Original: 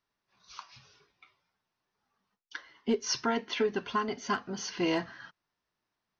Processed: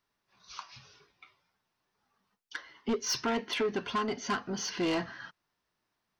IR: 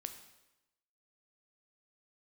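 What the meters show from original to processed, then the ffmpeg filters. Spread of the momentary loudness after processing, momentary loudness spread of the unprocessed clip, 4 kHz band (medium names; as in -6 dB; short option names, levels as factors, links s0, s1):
16 LU, 19 LU, +0.5 dB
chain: -af "asoftclip=type=tanh:threshold=0.0398,volume=1.41"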